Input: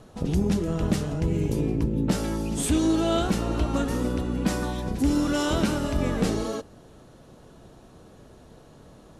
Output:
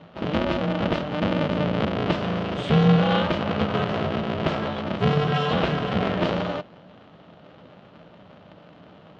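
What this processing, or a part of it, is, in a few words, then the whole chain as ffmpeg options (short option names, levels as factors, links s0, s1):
ring modulator pedal into a guitar cabinet: -af "aeval=exprs='val(0)*sgn(sin(2*PI*150*n/s))':c=same,highpass=100,equalizer=f=170:t=q:w=4:g=10,equalizer=f=360:t=q:w=4:g=-4,equalizer=f=610:t=q:w=4:g=6,equalizer=f=1300:t=q:w=4:g=4,equalizer=f=3000:t=q:w=4:g=6,lowpass=f=3900:w=0.5412,lowpass=f=3900:w=1.3066"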